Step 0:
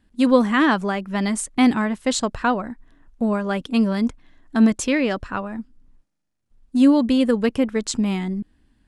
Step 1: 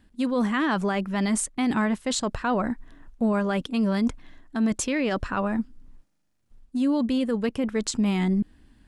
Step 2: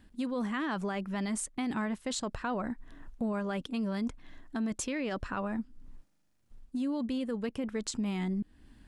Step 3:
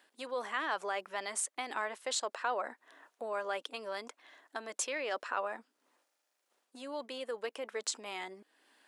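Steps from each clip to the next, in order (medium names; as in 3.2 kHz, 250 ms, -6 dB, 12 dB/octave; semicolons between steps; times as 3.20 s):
reverse; compression 16:1, threshold -24 dBFS, peak gain reduction 15.5 dB; reverse; peak limiter -21.5 dBFS, peak gain reduction 9 dB; trim +5 dB
compression 2:1, threshold -38 dBFS, peak gain reduction 10 dB
high-pass 470 Hz 24 dB/octave; trim +2 dB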